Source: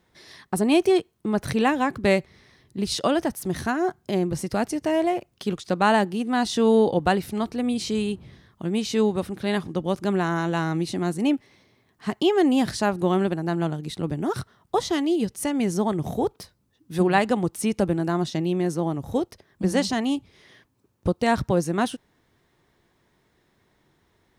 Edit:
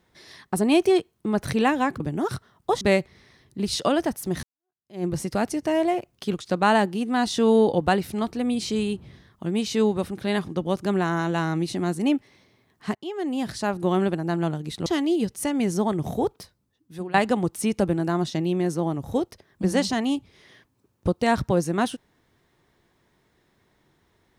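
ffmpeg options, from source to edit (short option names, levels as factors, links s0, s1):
-filter_complex "[0:a]asplit=7[s0][s1][s2][s3][s4][s5][s6];[s0]atrim=end=2.002[s7];[s1]atrim=start=14.048:end=14.862[s8];[s2]atrim=start=1.998:end=3.62,asetpts=PTS-STARTPTS,afade=t=out:st=1.618:d=0.004:c=hsin[s9];[s3]atrim=start=3.62:end=12.14,asetpts=PTS-STARTPTS,afade=t=in:d=0.62:c=exp,afade=t=out:st=8.516:d=0.004:c=hsin:silence=0.112202[s10];[s4]atrim=start=12.14:end=14.052,asetpts=PTS-STARTPTS,afade=t=in:d=1.06:silence=0.112202[s11];[s5]atrim=start=14.858:end=17.14,asetpts=PTS-STARTPTS,afade=t=out:st=1.392:d=0.89:silence=0.133352[s12];[s6]atrim=start=17.14,asetpts=PTS-STARTPTS,afade=t=in:d=0.004:c=hsin:silence=0.133352[s13];[s7][s8]acrossfade=d=0.004:c1=hsin:c2=hsin[s14];[s9][s10][s11]concat=n=3:v=0:a=1[s15];[s14][s15]acrossfade=d=0.004:c1=hsin:c2=hsin[s16];[s12][s13]concat=n=2:v=0:a=1[s17];[s16][s17]acrossfade=d=0.004:c1=hsin:c2=hsin"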